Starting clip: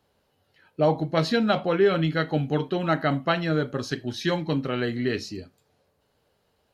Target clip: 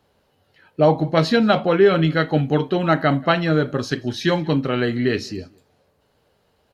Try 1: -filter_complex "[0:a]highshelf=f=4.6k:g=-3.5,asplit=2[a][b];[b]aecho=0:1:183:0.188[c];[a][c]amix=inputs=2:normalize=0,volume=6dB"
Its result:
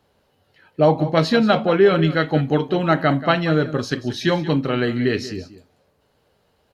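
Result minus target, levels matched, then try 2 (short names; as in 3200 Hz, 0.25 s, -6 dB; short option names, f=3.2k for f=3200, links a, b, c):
echo-to-direct +10.5 dB
-filter_complex "[0:a]highshelf=f=4.6k:g=-3.5,asplit=2[a][b];[b]aecho=0:1:183:0.0562[c];[a][c]amix=inputs=2:normalize=0,volume=6dB"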